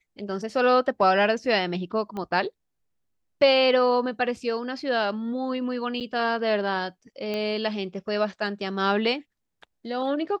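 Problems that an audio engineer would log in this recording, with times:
2.17 pop -22 dBFS
6–6.01 gap 7.8 ms
7.34 pop -17 dBFS

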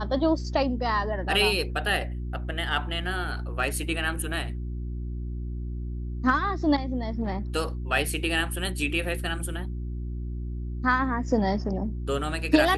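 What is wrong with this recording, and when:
hum 60 Hz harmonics 6 -32 dBFS

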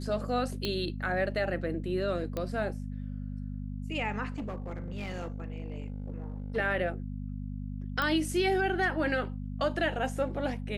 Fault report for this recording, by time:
hum 50 Hz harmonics 5 -37 dBFS
0.65 pop -17 dBFS
2.37 pop -20 dBFS
4.3–6.57 clipped -32 dBFS
8.02 pop -17 dBFS

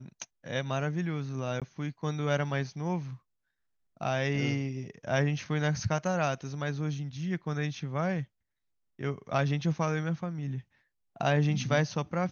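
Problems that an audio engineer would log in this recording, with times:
1.6–1.62 gap 17 ms

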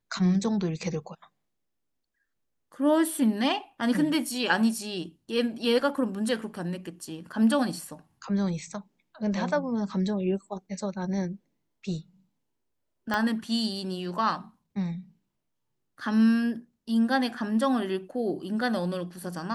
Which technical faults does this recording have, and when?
13.14 pop -14 dBFS

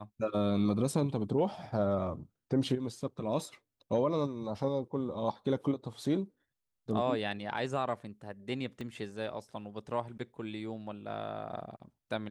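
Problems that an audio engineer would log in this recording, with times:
8.81 pop -29 dBFS

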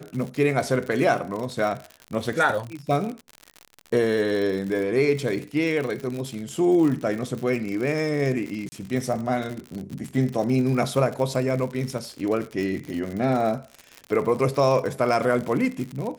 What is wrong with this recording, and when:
crackle 78/s -29 dBFS
8.69–8.72 gap 30 ms

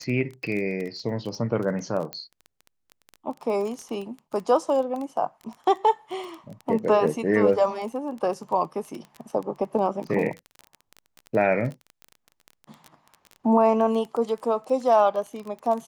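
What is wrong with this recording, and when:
crackle 18/s -30 dBFS
2.13 pop -16 dBFS

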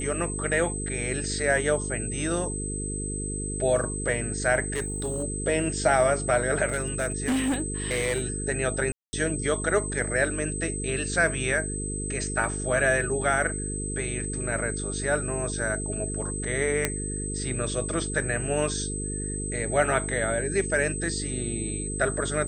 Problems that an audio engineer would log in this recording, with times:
buzz 50 Hz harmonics 9 -33 dBFS
tone 8200 Hz -33 dBFS
4.73–5.24 clipped -24 dBFS
6.67–8.22 clipped -21.5 dBFS
8.92–9.13 gap 0.21 s
16.85 pop -8 dBFS

